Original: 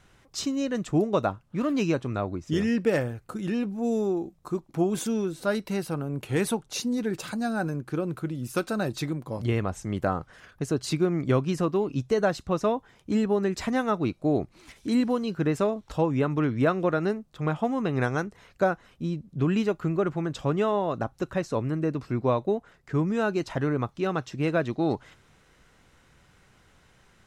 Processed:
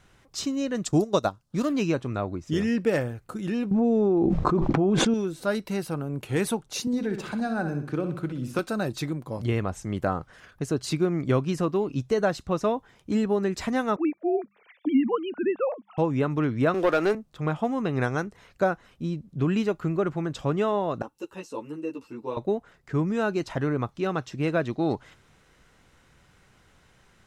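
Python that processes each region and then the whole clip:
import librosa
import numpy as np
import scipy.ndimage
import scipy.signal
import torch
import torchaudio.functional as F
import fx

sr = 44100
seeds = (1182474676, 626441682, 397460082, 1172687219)

y = fx.chain(x, sr, fx.high_shelf_res(hz=3400.0, db=9.0, q=1.5),
    fx.transient(attack_db=3, sustain_db=-9), at=(0.85, 1.69))
y = fx.chain(y, sr, fx.spacing_loss(db_at_10k=30),
    fx.env_flatten(amount_pct=100), at=(3.71, 5.14))
y = fx.chain(y, sr, fx.high_shelf(hz=6400.0, db=-12.0),
    fx.room_flutter(wall_m=10.5, rt60_s=0.43),
    fx.band_squash(depth_pct=40), at=(6.87, 8.59))
y = fx.chain(y, sr, fx.sine_speech(),
    fx.hum_notches(base_hz=50, count=4), at=(13.96, 15.98))
y = fx.chain(y, sr, fx.highpass(hz=340.0, slope=12),
    fx.leveller(passes=2), at=(16.74, 17.15))
y = fx.chain(y, sr, fx.pre_emphasis(coefficient=0.9),
    fx.small_body(hz=(320.0, 450.0, 880.0, 2700.0), ring_ms=25, db=17),
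    fx.ensemble(), at=(21.02, 22.37))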